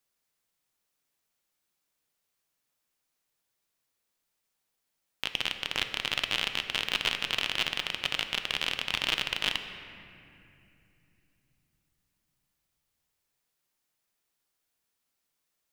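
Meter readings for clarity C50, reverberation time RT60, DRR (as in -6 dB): 8.0 dB, 2.7 s, 7.0 dB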